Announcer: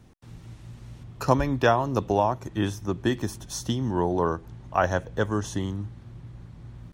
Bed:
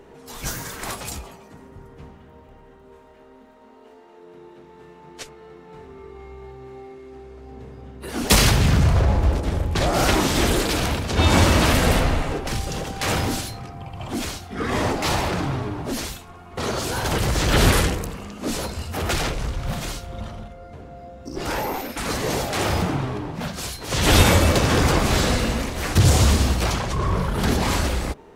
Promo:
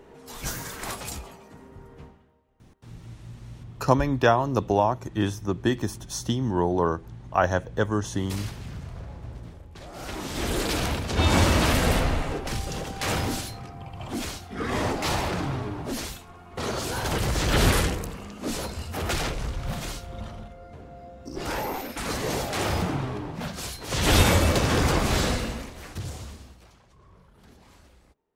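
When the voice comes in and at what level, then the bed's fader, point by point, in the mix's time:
2.60 s, +1.0 dB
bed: 0:02.02 −3 dB
0:02.44 −22 dB
0:09.87 −22 dB
0:10.66 −4 dB
0:25.26 −4 dB
0:26.72 −32.5 dB

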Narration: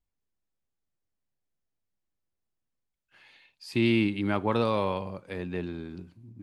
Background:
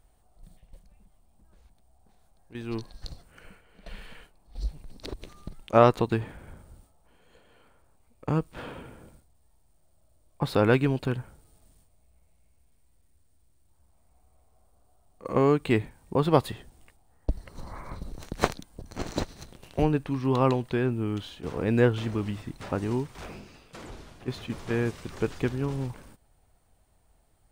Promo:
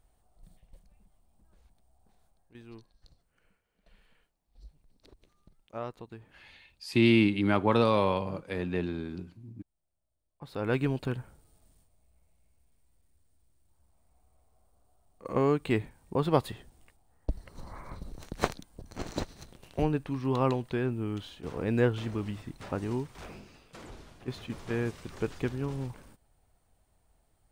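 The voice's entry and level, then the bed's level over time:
3.20 s, +2.0 dB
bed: 0:02.24 −4.5 dB
0:02.93 −20 dB
0:10.38 −20 dB
0:10.81 −4 dB

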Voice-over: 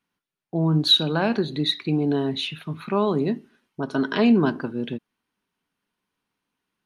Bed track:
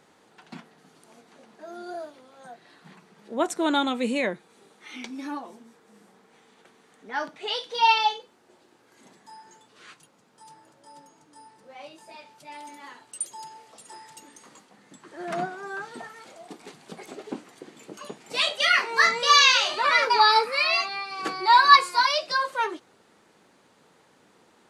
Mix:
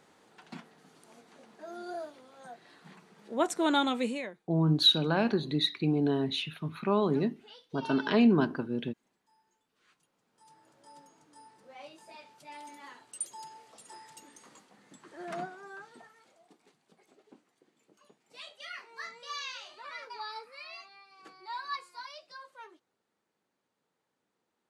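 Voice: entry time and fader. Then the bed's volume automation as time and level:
3.95 s, −5.0 dB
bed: 0:04.01 −3 dB
0:04.49 −23.5 dB
0:09.67 −23.5 dB
0:10.81 −5 dB
0:15.04 −5 dB
0:16.92 −23 dB

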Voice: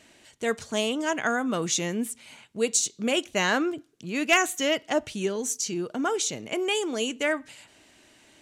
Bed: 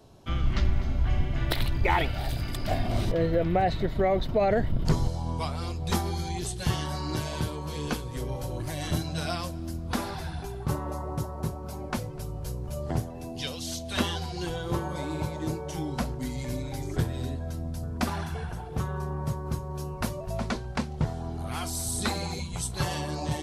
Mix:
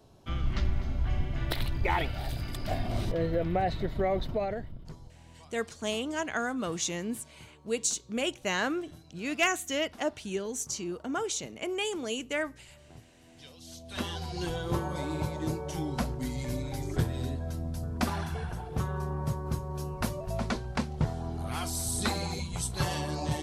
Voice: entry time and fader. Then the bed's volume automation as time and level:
5.10 s, −5.5 dB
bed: 0:04.30 −4 dB
0:04.96 −23 dB
0:13.12 −23 dB
0:14.37 −1 dB

